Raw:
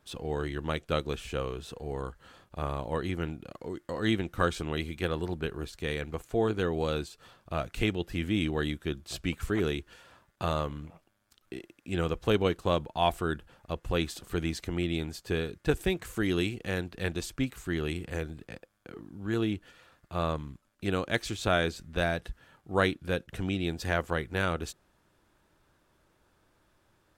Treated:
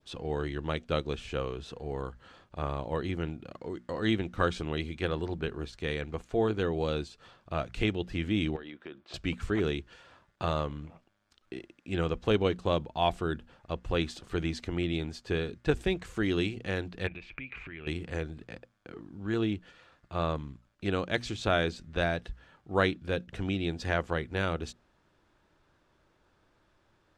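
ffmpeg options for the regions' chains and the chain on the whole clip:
-filter_complex "[0:a]asettb=1/sr,asplit=3[a][b][c];[a]atrim=end=8.564[d];[b]atrim=start=8.56:end=9.14,asetpts=PTS-STARTPTS,afade=t=in:d=0.004:c=qsin,afade=t=out:st=0.576:d=0.004:c=qsin,highpass=310,lowpass=2.8k,acompressor=threshold=-38dB:ratio=10:attack=3.2:release=140:knee=1:detection=peak[e];[c]atrim=start=9.136[f];[d][e]acrossfade=d=0.004:c1=hsin:c2=qsin[g];[g][f]acrossfade=d=0.004:c1=qsin:c2=hsin,asettb=1/sr,asplit=3[h][i][j];[h]atrim=end=17.074[k];[i]atrim=start=17.07:end=17.87,asetpts=PTS-STARTPTS,afade=t=in:d=0.004:c=qsin,afade=t=out:st=0.796:d=0.004:c=qsin,acompressor=threshold=-41dB:ratio=16:attack=3.2:release=140:knee=1:detection=peak,lowpass=f=2.4k:t=q:w=11[l];[j]atrim=start=17.866[m];[k][l]acrossfade=d=0.004:c1=hsin:c2=qsin[n];[n][m]acrossfade=d=0.004:c1=qsin:c2=hsin,lowpass=5.8k,bandreject=f=60:t=h:w=6,bandreject=f=120:t=h:w=6,bandreject=f=180:t=h:w=6,bandreject=f=240:t=h:w=6,adynamicequalizer=threshold=0.00631:dfrequency=1400:dqfactor=1:tfrequency=1400:tqfactor=1:attack=5:release=100:ratio=0.375:range=2:mode=cutabove:tftype=bell"

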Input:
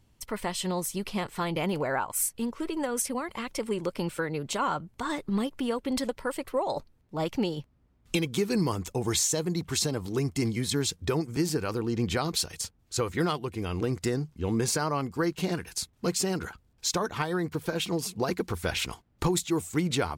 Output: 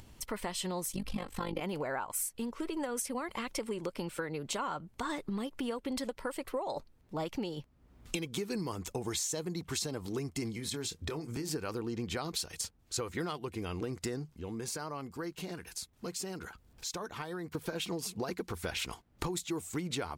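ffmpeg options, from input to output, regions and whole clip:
-filter_complex "[0:a]asettb=1/sr,asplit=3[a][b][c];[a]atrim=end=0.924[d];[b]atrim=start=0.92:end=1.61,asetpts=PTS-STARTPTS,afade=t=in:d=0.004:c=qsin,afade=t=out:st=0.686:d=0.004:c=qsin,lowshelf=f=230:g=10.5,aecho=1:1:3.8:0.83,atrim=end_sample=30429,tremolo=f=49:d=0.824[e];[c]atrim=start=1.606[f];[d][e]acrossfade=d=0.004:c1=hsin:c2=qsin[g];[g][f]acrossfade=d=0.004:c1=qsin:c2=hsin,asettb=1/sr,asplit=3[h][i][j];[h]atrim=end=10.544[k];[i]atrim=start=10.54:end=11.51,asetpts=PTS-STARTPTS,afade=t=in:d=0.004:c=qsin,afade=t=out:st=0.966:d=0.004:c=qsin,acompressor=threshold=-30dB:ratio=6:attack=3.2:release=140:knee=1:detection=peak,asplit=2[l][m];[m]adelay=26,volume=-11dB[n];[l][n]amix=inputs=2:normalize=0,atrim=end_sample=42777[o];[j]atrim=start=11.506[p];[k][o]acrossfade=d=0.004:c1=hsin:c2=qsin[q];[q][p]acrossfade=d=0.004:c1=qsin:c2=hsin,asettb=1/sr,asplit=3[r][s][t];[r]atrim=end=14.304[u];[s]atrim=start=14.3:end=17.55,asetpts=PTS-STARTPTS,afade=t=in:d=0.004:c=qsin,afade=t=out:st=3.246:d=0.004:c=qsin,highshelf=f=11k:g=3.5,acompressor=threshold=-52dB:ratio=1.5:attack=3.2:release=140:knee=1:detection=peak[v];[t]atrim=start=17.546[w];[u][v]acrossfade=d=0.004:c1=hsin:c2=qsin[x];[x][w]acrossfade=d=0.004:c1=qsin:c2=hsin,acompressor=threshold=-33dB:ratio=4,equalizer=f=110:t=o:w=1.6:g=-3.5,acompressor=mode=upward:threshold=-44dB:ratio=2.5"

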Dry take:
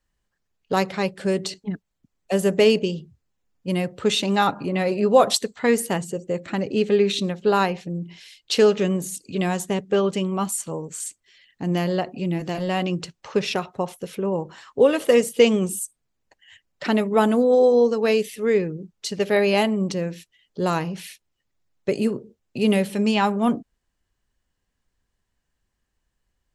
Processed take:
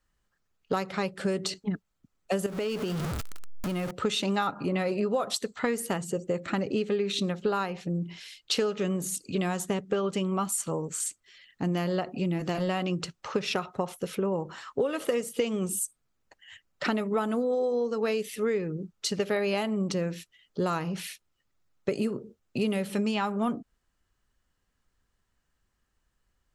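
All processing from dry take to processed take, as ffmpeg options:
-filter_complex "[0:a]asettb=1/sr,asplit=3[a][b][c];[a]atrim=end=2.464[d];[b]atrim=start=2.46:end=3.91,asetpts=PTS-STARTPTS,afade=t=in:d=0.004:c=qsin,afade=t=out:st=1.446:d=0.004:c=qsin,aeval=exprs='val(0)+0.5*0.0501*sgn(val(0))':c=same,acompressor=threshold=-28dB:ratio=5:attack=3.2:release=140:knee=1:detection=peak[e];[c]atrim=start=3.906[f];[d][e]acrossfade=d=0.004:c1=hsin:c2=qsin[g];[g][f]acrossfade=d=0.004:c1=qsin:c2=hsin,equalizer=f=1.3k:w=4.7:g=7,acompressor=threshold=-24dB:ratio=12"

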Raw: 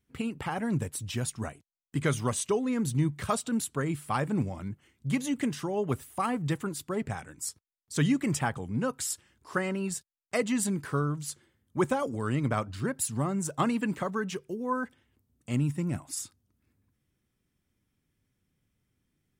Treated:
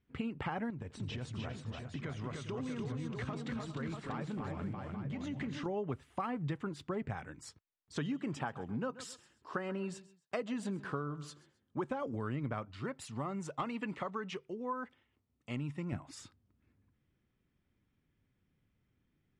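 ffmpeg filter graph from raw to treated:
-filter_complex "[0:a]asettb=1/sr,asplit=3[a][b][c];[a]atrim=end=0.704[d];[b]atrim=start=0.7:end=5.66,asetpts=PTS-STARTPTS,afade=t=in:d=0.004:c=qsin,afade=t=out:st=4.956:d=0.004:c=qsin,lowpass=f=8.3k:w=0.5412,lowpass=f=8.3k:w=1.3066,acompressor=threshold=-36dB:ratio=12:attack=3.2:release=140:knee=1:detection=peak,aecho=1:1:86|274|300|404|640|843:0.106|0.251|0.631|0.178|0.473|0.299,atrim=end_sample=218736[e];[c]atrim=start=5.656[f];[d][e]acrossfade=d=0.004:c1=hsin:c2=qsin[g];[g][f]acrossfade=d=0.004:c1=qsin:c2=hsin,asettb=1/sr,asplit=3[h][i][j];[h]atrim=end=7.974[k];[i]atrim=start=7.97:end=11.9,asetpts=PTS-STARTPTS,afade=t=in:d=0.004:c=qsin,afade=t=out:st=3.926:d=0.004:c=qsin,highpass=f=230:p=1,equalizer=f=2.1k:w=3.8:g=-7,aecho=1:1:132|264:0.112|0.0314,atrim=end_sample=173313[l];[j]atrim=start=11.896[m];[k][l]acrossfade=d=0.004:c1=hsin:c2=qsin[n];[n][m]acrossfade=d=0.004:c1=qsin:c2=hsin,asettb=1/sr,asplit=3[o][p][q];[o]atrim=end=12.654[r];[p]atrim=start=12.65:end=15.93,asetpts=PTS-STARTPTS,afade=t=in:d=0.004:c=qsin,afade=t=out:st=3.276:d=0.004:c=qsin,lowshelf=f=490:g=-9.5,bandreject=f=1.6k:w=7,asoftclip=type=hard:threshold=-22.5dB[s];[q]atrim=start=15.926[t];[r][s]acrossfade=d=0.004:c1=hsin:c2=qsin[u];[u][t]acrossfade=d=0.004:c1=qsin:c2=hsin,lowpass=3.1k,acompressor=threshold=-34dB:ratio=6"

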